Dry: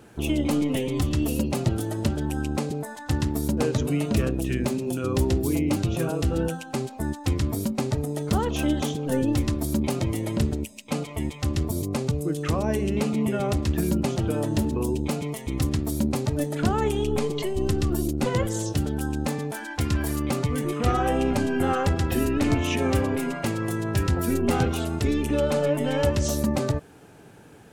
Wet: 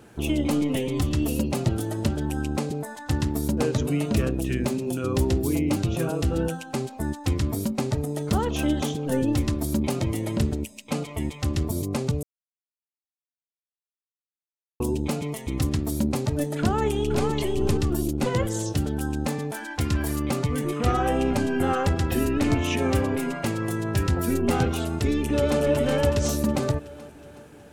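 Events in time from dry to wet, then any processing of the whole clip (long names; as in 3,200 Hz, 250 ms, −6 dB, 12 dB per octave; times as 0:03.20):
0:12.23–0:14.80: silence
0:16.59–0:17.26: delay throw 510 ms, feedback 15%, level −5 dB
0:24.97–0:25.61: delay throw 370 ms, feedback 55%, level −4 dB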